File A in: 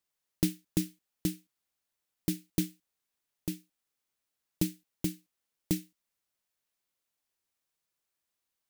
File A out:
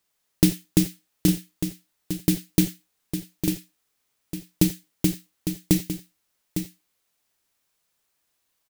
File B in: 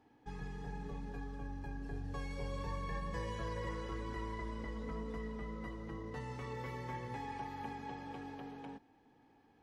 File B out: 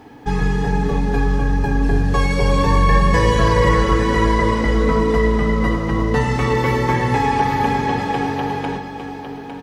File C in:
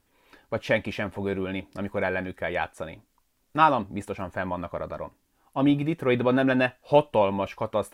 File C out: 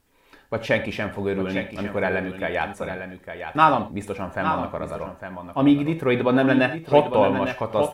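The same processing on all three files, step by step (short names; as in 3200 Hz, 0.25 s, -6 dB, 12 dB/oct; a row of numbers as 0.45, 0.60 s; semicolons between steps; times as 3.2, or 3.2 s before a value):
on a send: echo 0.855 s -8.5 dB; on the sum: non-linear reverb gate 0.11 s flat, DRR 9 dB; normalise peaks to -2 dBFS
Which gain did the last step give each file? +10.0, +25.0, +2.5 dB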